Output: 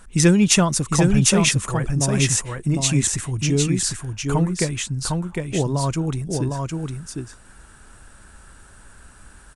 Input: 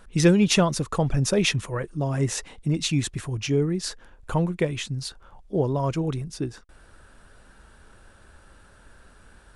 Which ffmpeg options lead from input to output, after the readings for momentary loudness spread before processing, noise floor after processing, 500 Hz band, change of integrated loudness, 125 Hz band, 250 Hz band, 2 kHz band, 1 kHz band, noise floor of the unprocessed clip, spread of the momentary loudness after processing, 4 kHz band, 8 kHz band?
12 LU, −48 dBFS, +1.0 dB, +4.5 dB, +5.0 dB, +4.5 dB, +4.5 dB, +4.0 dB, −54 dBFS, 12 LU, +4.5 dB, +11.5 dB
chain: -filter_complex "[0:a]equalizer=frequency=500:width_type=o:width=1:gain=-6,equalizer=frequency=4000:width_type=o:width=1:gain=-4,equalizer=frequency=8000:width_type=o:width=1:gain=9,asplit=2[link_01][link_02];[link_02]aecho=0:1:756:0.631[link_03];[link_01][link_03]amix=inputs=2:normalize=0,volume=4dB"

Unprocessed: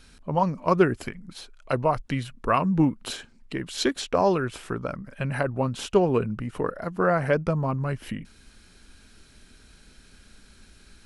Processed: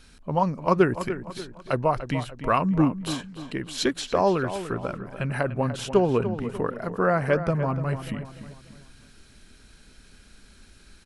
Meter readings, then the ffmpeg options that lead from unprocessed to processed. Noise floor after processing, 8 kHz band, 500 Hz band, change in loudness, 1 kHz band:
−53 dBFS, 0.0 dB, +0.5 dB, 0.0 dB, +0.5 dB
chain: -filter_complex "[0:a]asplit=2[link_01][link_02];[link_02]adelay=294,lowpass=frequency=3100:poles=1,volume=-11dB,asplit=2[link_03][link_04];[link_04]adelay=294,lowpass=frequency=3100:poles=1,volume=0.42,asplit=2[link_05][link_06];[link_06]adelay=294,lowpass=frequency=3100:poles=1,volume=0.42,asplit=2[link_07][link_08];[link_08]adelay=294,lowpass=frequency=3100:poles=1,volume=0.42[link_09];[link_01][link_03][link_05][link_07][link_09]amix=inputs=5:normalize=0"

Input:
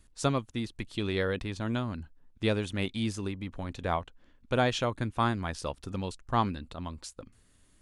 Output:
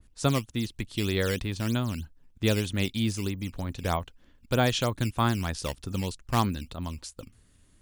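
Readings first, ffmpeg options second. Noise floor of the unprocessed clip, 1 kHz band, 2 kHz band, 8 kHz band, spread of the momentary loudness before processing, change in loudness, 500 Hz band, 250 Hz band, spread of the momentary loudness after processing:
−63 dBFS, +0.5 dB, +2.0 dB, +6.5 dB, 12 LU, +3.0 dB, +1.0 dB, +3.0 dB, 11 LU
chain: -filter_complex "[0:a]equalizer=frequency=79:width=0.32:gain=5.5,acrossover=split=740|5600[link_01][link_02][link_03];[link_01]acrusher=samples=10:mix=1:aa=0.000001:lfo=1:lforange=16:lforate=3.2[link_04];[link_04][link_02][link_03]amix=inputs=3:normalize=0,adynamicequalizer=threshold=0.00631:dfrequency=2300:dqfactor=0.7:tfrequency=2300:tqfactor=0.7:attack=5:release=100:ratio=0.375:range=2.5:mode=boostabove:tftype=highshelf"

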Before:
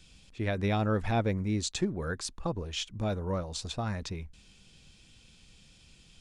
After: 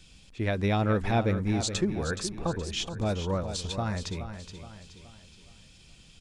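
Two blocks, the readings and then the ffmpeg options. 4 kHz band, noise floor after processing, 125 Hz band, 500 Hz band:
+3.0 dB, −55 dBFS, +3.0 dB, +3.0 dB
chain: -af "aecho=1:1:422|844|1266|1688|2110:0.316|0.136|0.0585|0.0251|0.0108,volume=2.5dB"

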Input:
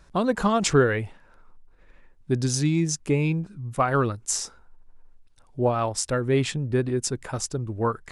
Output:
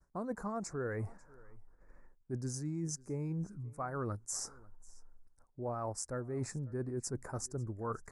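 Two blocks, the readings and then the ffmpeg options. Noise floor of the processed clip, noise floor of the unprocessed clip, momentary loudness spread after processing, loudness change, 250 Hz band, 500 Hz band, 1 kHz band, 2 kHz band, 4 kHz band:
−67 dBFS, −55 dBFS, 4 LU, −15.0 dB, −15.0 dB, −16.0 dB, −15.5 dB, −19.0 dB, −18.5 dB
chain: -af "areverse,acompressor=threshold=-30dB:ratio=12,areverse,agate=range=-33dB:threshold=-50dB:ratio=3:detection=peak,asuperstop=centerf=3100:order=4:qfactor=0.72,equalizer=frequency=2900:width=5.7:gain=6,aecho=1:1:543:0.0668,volume=-4.5dB"

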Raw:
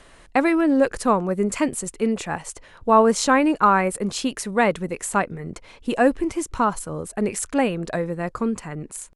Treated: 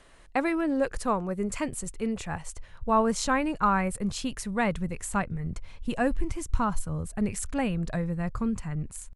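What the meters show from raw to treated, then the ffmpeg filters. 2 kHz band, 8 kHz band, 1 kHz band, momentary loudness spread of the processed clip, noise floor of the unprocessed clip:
−7.0 dB, −7.0 dB, −8.0 dB, 10 LU, −50 dBFS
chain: -af "asubboost=boost=9:cutoff=120,volume=-7dB"

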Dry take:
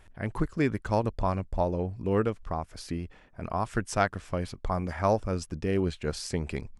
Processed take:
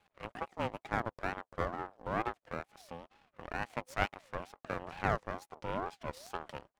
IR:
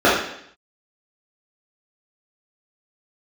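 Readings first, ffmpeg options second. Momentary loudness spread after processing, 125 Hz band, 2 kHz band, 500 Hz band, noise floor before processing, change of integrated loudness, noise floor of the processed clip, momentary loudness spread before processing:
11 LU, −13.5 dB, −2.0 dB, −10.5 dB, −55 dBFS, −8.5 dB, below −85 dBFS, 9 LU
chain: -af "highpass=350,highshelf=frequency=2800:gain=-10,aeval=exprs='max(val(0),0)':channel_layout=same,aeval=exprs='val(0)*sin(2*PI*670*n/s+670*0.25/2.2*sin(2*PI*2.2*n/s))':channel_layout=same"

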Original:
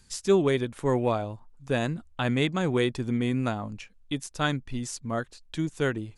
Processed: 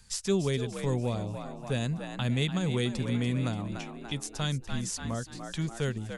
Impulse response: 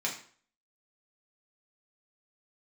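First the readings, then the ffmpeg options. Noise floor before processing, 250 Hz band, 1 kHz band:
−58 dBFS, −3.5 dB, −7.5 dB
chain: -filter_complex "[0:a]equalizer=frequency=310:width=2.5:gain=-12,asplit=6[link_01][link_02][link_03][link_04][link_05][link_06];[link_02]adelay=290,afreqshift=55,volume=-11dB[link_07];[link_03]adelay=580,afreqshift=110,volume=-17.2dB[link_08];[link_04]adelay=870,afreqshift=165,volume=-23.4dB[link_09];[link_05]adelay=1160,afreqshift=220,volume=-29.6dB[link_10];[link_06]adelay=1450,afreqshift=275,volume=-35.8dB[link_11];[link_01][link_07][link_08][link_09][link_10][link_11]amix=inputs=6:normalize=0,acrossover=split=400|3000[link_12][link_13][link_14];[link_13]acompressor=threshold=-41dB:ratio=6[link_15];[link_12][link_15][link_14]amix=inputs=3:normalize=0,volume=1.5dB"

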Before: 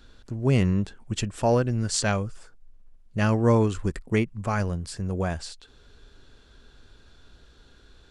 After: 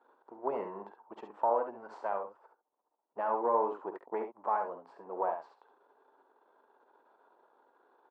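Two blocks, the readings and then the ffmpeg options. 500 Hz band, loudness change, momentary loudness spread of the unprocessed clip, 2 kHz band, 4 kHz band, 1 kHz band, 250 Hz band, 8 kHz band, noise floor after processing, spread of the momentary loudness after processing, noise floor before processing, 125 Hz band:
−7.0 dB, −9.0 dB, 11 LU, −16.0 dB, below −30 dB, +0.5 dB, −21.0 dB, below −40 dB, −84 dBFS, 18 LU, −55 dBFS, below −40 dB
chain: -af "aeval=exprs='if(lt(val(0),0),0.447*val(0),val(0))':channel_layout=same,highpass=frequency=360:width=0.5412,highpass=frequency=360:width=1.3066,alimiter=limit=-20dB:level=0:latency=1:release=158,lowpass=frequency=920:width_type=q:width=4.9,aecho=1:1:50|69:0.224|0.398,volume=-5.5dB"

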